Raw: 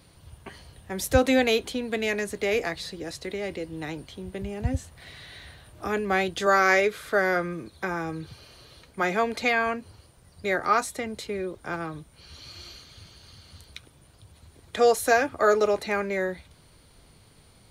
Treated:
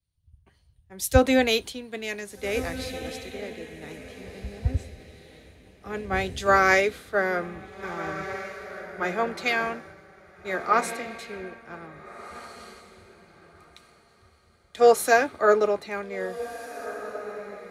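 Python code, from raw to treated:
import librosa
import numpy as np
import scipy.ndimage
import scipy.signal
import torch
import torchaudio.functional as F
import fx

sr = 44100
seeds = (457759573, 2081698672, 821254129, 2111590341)

y = fx.echo_diffused(x, sr, ms=1667, feedback_pct=41, wet_db=-6.0)
y = fx.band_widen(y, sr, depth_pct=100)
y = y * librosa.db_to_amplitude(-4.5)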